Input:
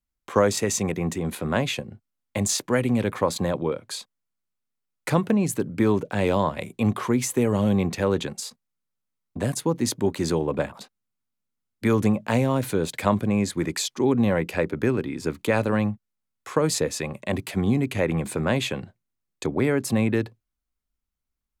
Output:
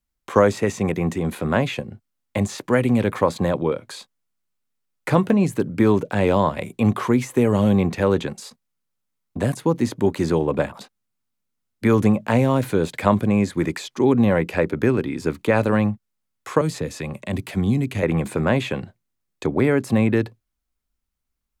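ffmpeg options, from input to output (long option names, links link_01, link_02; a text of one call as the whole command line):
ffmpeg -i in.wav -filter_complex "[0:a]asettb=1/sr,asplit=3[link_01][link_02][link_03];[link_01]atrim=end=3.794[link_04];[link_02]atrim=start=3.79:end=5.45,asetpts=PTS-STARTPTS,afade=type=in:duration=0.004:curve=qsin,afade=type=out:start_time=1.656:duration=0.004:curve=qsin,asplit=2[link_05][link_06];[link_06]adelay=16,volume=-13.5dB[link_07];[link_05][link_07]amix=inputs=2:normalize=0,atrim=end_sample=73206[link_08];[link_03]atrim=start=5.446[link_09];[link_04][link_08]acrossfade=duration=0.004:curve1=hsin:curve2=qsin[link_10];[link_10][link_09]acrossfade=duration=0.004:curve1=qsin:curve2=hsin,asettb=1/sr,asplit=3[link_11][link_12][link_13];[link_11]atrim=end=16.614[link_14];[link_12]atrim=start=16.61:end=18.03,asetpts=PTS-STARTPTS,afade=type=in:duration=0.004:curve=qsin,afade=type=out:start_time=1.416:duration=0.004:curve=qsin,acrossover=split=250|3000[link_15][link_16][link_17];[link_16]acompressor=threshold=-38dB:ratio=2:attack=3.2:release=140:knee=2.83:detection=peak[link_18];[link_15][link_18][link_17]amix=inputs=3:normalize=0[link_19];[link_13]atrim=start=18.026[link_20];[link_14][link_19]acrossfade=duration=0.004:curve1=hsin:curve2=qsin[link_21];[link_21][link_20]acrossfade=duration=0.004:curve1=qsin:curve2=hsin,acrossover=split=2600[link_22][link_23];[link_23]acompressor=threshold=-40dB:ratio=4:attack=1:release=60[link_24];[link_22][link_24]amix=inputs=2:normalize=0,volume=4dB" out.wav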